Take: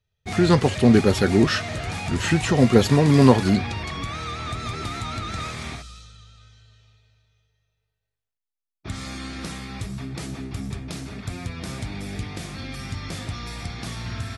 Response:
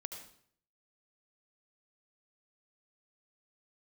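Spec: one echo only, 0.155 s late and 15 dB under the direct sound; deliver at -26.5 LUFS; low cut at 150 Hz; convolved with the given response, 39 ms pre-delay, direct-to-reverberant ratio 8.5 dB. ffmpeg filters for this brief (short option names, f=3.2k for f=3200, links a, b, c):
-filter_complex "[0:a]highpass=150,aecho=1:1:155:0.178,asplit=2[a][b];[1:a]atrim=start_sample=2205,adelay=39[c];[b][c]afir=irnorm=-1:irlink=0,volume=-6dB[d];[a][d]amix=inputs=2:normalize=0,volume=-4.5dB"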